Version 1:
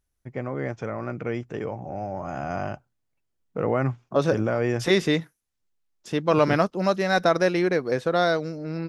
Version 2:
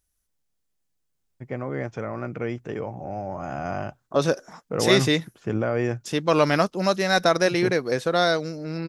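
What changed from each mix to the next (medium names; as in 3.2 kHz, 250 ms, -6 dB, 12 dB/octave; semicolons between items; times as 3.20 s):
first voice: entry +1.15 s; second voice: add treble shelf 3.5 kHz +10 dB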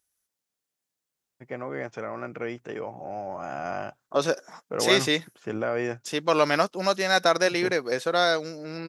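master: add high-pass 430 Hz 6 dB/octave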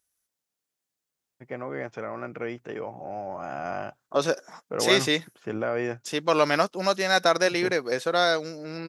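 first voice: add distance through air 55 m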